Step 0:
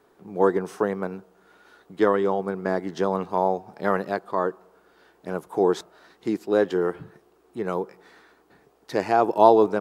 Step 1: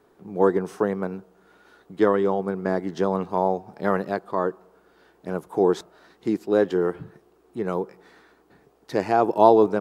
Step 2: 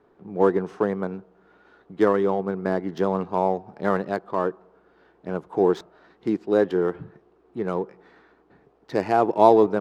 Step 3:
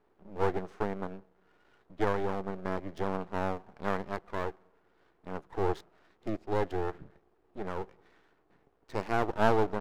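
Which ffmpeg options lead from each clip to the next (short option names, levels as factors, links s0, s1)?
-af "lowshelf=f=410:g=5,volume=0.841"
-af "adynamicsmooth=sensitivity=7.5:basefreq=3300"
-af "aeval=exprs='max(val(0),0)':c=same,volume=0.501"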